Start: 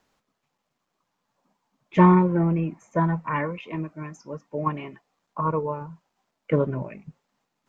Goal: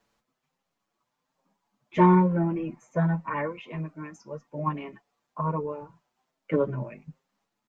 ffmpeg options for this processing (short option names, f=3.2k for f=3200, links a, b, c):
-filter_complex "[0:a]asplit=2[a][b];[b]adelay=6.7,afreqshift=1.2[c];[a][c]amix=inputs=2:normalize=1"